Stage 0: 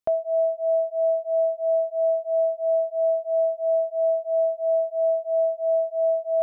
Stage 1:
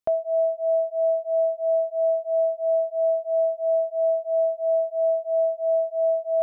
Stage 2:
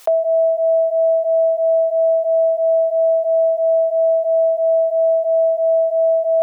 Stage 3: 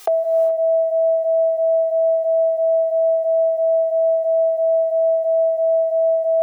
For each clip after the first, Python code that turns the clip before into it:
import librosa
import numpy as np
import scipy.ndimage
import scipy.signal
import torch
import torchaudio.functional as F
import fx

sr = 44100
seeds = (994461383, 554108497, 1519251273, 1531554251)

y1 = x
y2 = scipy.signal.sosfilt(scipy.signal.butter(4, 440.0, 'highpass', fs=sr, output='sos'), y1)
y2 = fx.env_flatten(y2, sr, amount_pct=70)
y2 = F.gain(torch.from_numpy(y2), 6.0).numpy()
y3 = y2 + 0.93 * np.pad(y2, (int(2.5 * sr / 1000.0), 0))[:len(y2)]
y3 = fx.rev_gated(y3, sr, seeds[0], gate_ms=450, shape='rising', drr_db=8.5)